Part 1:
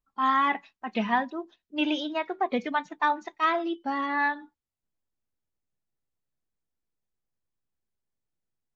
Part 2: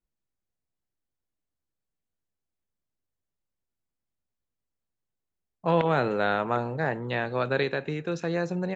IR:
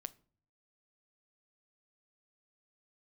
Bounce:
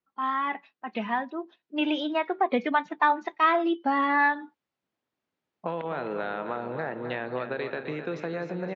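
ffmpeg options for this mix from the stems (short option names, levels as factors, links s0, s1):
-filter_complex "[0:a]dynaudnorm=f=230:g=17:m=5.31,volume=0.841[s0];[1:a]acompressor=threshold=0.0398:ratio=6,volume=1.33,asplit=2[s1][s2];[s2]volume=0.316,aecho=0:1:259|518|777|1036|1295|1554|1813|2072:1|0.56|0.314|0.176|0.0983|0.0551|0.0308|0.0173[s3];[s0][s1][s3]amix=inputs=3:normalize=0,highpass=200,lowpass=3300,acompressor=threshold=0.0316:ratio=1.5"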